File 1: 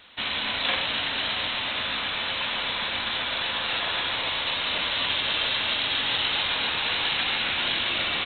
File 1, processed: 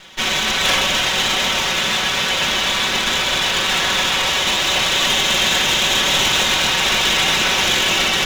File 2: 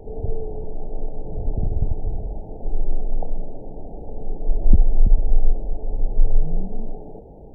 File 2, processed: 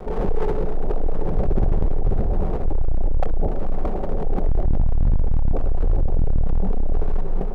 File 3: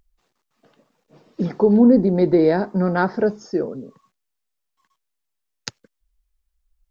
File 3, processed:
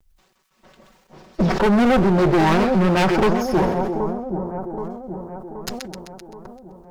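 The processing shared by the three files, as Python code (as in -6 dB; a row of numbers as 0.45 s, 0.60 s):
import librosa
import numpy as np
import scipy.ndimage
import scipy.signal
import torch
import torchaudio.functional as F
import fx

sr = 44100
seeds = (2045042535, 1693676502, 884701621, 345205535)

y = fx.lower_of_two(x, sr, delay_ms=5.3)
y = fx.dynamic_eq(y, sr, hz=170.0, q=0.86, threshold_db=-33.0, ratio=4.0, max_db=-3)
y = fx.echo_split(y, sr, split_hz=1100.0, low_ms=776, high_ms=129, feedback_pct=52, wet_db=-11.5)
y = np.clip(10.0 ** (21.5 / 20.0) * y, -1.0, 1.0) / 10.0 ** (21.5 / 20.0)
y = fx.sustainer(y, sr, db_per_s=49.0)
y = y * 10.0 ** (-9 / 20.0) / np.max(np.abs(y))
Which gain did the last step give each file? +11.5 dB, +8.0 dB, +8.0 dB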